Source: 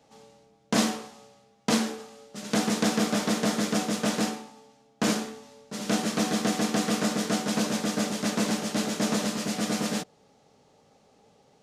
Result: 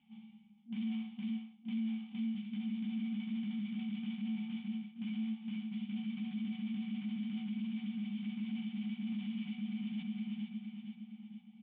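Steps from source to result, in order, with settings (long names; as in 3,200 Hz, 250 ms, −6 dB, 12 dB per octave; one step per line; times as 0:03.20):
brick-wall band-stop 230–720 Hz
in parallel at −9.5 dB: wave folding −24 dBFS
on the sum: formant resonators in series i
repeating echo 463 ms, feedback 43%, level −12 dB
reversed playback
downward compressor 6 to 1, threshold −41 dBFS, peak gain reduction 13.5 dB
reversed playback
dynamic equaliser 290 Hz, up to −4 dB, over −57 dBFS, Q 0.75
brickwall limiter −44 dBFS, peak gain reduction 7 dB
low shelf with overshoot 170 Hz −11 dB, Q 3
level +7.5 dB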